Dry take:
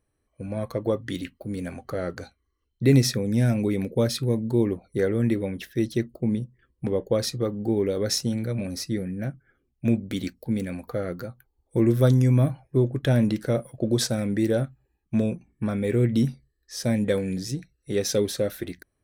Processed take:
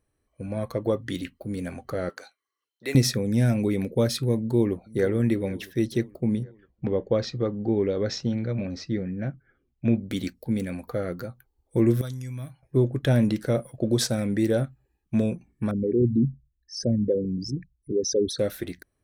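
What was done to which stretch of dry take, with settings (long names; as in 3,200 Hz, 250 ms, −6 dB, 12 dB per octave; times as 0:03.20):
0:02.09–0:02.95: high-pass filter 740 Hz
0:04.38–0:05.07: delay throw 480 ms, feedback 55%, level −17.5 dB
0:06.43–0:10.00: Bessel low-pass filter 3,600 Hz, order 8
0:12.01–0:12.63: guitar amp tone stack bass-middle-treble 5-5-5
0:15.71–0:18.39: spectral envelope exaggerated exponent 3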